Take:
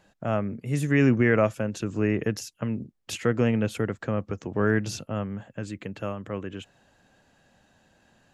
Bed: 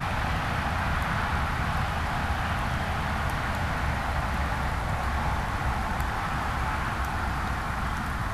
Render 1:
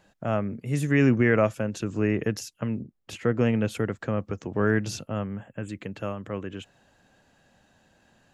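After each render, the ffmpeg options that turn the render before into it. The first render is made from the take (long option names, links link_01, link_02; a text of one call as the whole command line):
ffmpeg -i in.wav -filter_complex "[0:a]asettb=1/sr,asplit=3[link_01][link_02][link_03];[link_01]atrim=end=2.814[link_04];[link_02]atrim=start=2.81:end=3.41,asetpts=PTS-STARTPTS,afade=type=in:duration=0.004:curve=qsin,afade=type=out:start_time=0.596:duration=0.004:curve=qsin,highshelf=frequency=2700:gain=-10[link_05];[link_03]atrim=start=3.406[link_06];[link_04][link_05]acrossfade=duration=0.004:curve1=hsin:curve2=qsin[link_07];[link_07][link_06]acrossfade=duration=0.004:curve1=qsin:curve2=hsin,asettb=1/sr,asplit=3[link_08][link_09][link_10];[link_08]atrim=end=5.264[link_11];[link_09]atrim=start=5.26:end=5.69,asetpts=PTS-STARTPTS,afade=type=in:duration=0.004:curve=qsin,afade=type=out:start_time=0.426:duration=0.004:curve=qsin,asuperstop=centerf=4900:order=8:qfactor=1.2[link_12];[link_10]atrim=start=5.686[link_13];[link_11][link_12]acrossfade=duration=0.004:curve1=hsin:curve2=qsin[link_14];[link_14][link_13]acrossfade=duration=0.004:curve1=qsin:curve2=hsin" out.wav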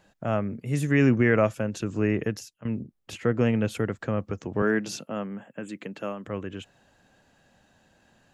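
ffmpeg -i in.wav -filter_complex "[0:a]asettb=1/sr,asplit=3[link_01][link_02][link_03];[link_01]atrim=end=4.624[link_04];[link_02]atrim=start=4.62:end=6.26,asetpts=PTS-STARTPTS,afade=type=in:duration=0.004:curve=qsin,afade=type=out:start_time=1.636:duration=0.004:curve=qsin,highpass=frequency=170:width=0.5412,highpass=frequency=170:width=1.3066[link_05];[link_03]atrim=start=6.256[link_06];[link_04][link_05]acrossfade=duration=0.004:curve1=hsin:curve2=qsin[link_07];[link_07][link_06]acrossfade=duration=0.004:curve1=qsin:curve2=hsin,asplit=2[link_08][link_09];[link_08]atrim=end=2.65,asetpts=PTS-STARTPTS,afade=type=out:start_time=2.2:duration=0.45:silence=0.149624[link_10];[link_09]atrim=start=2.65,asetpts=PTS-STARTPTS,afade=type=in:duration=0.004:curve=hsin:silence=0.149624[link_11];[link_10][link_11]concat=n=2:v=0:a=1" out.wav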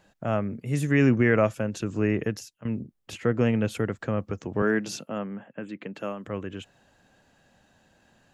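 ffmpeg -i in.wav -filter_complex "[0:a]asettb=1/sr,asplit=3[link_01][link_02][link_03];[link_01]atrim=end=5.184[link_04];[link_02]atrim=start=5.18:end=5.95,asetpts=PTS-STARTPTS,afade=type=in:duration=0.004:curve=qsin,afade=type=out:start_time=0.766:duration=0.004:curve=qsin,lowpass=3500[link_05];[link_03]atrim=start=5.946[link_06];[link_04][link_05]acrossfade=duration=0.004:curve1=hsin:curve2=qsin[link_07];[link_07][link_06]acrossfade=duration=0.004:curve1=qsin:curve2=hsin" out.wav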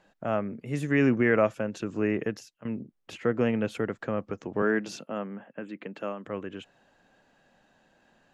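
ffmpeg -i in.wav -af "lowpass=frequency=3200:poles=1,equalizer=frequency=76:width_type=o:width=1.8:gain=-12" out.wav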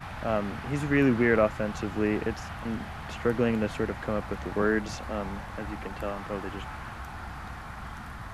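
ffmpeg -i in.wav -i bed.wav -filter_complex "[1:a]volume=-10.5dB[link_01];[0:a][link_01]amix=inputs=2:normalize=0" out.wav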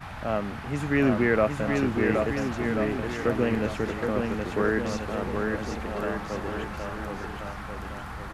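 ffmpeg -i in.wav -af "aecho=1:1:770|1386|1879|2273|2588:0.631|0.398|0.251|0.158|0.1" out.wav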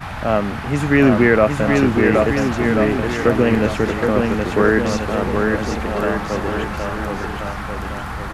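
ffmpeg -i in.wav -af "volume=10dB,alimiter=limit=-3dB:level=0:latency=1" out.wav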